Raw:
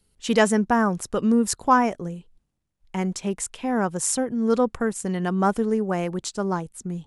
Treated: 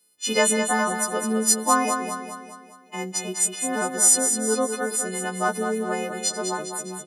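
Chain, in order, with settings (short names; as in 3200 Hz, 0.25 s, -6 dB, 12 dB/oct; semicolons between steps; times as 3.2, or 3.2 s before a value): frequency quantiser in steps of 3 st; Chebyshev high-pass 300 Hz, order 2; feedback echo 0.204 s, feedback 50%, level -7 dB; gain -2 dB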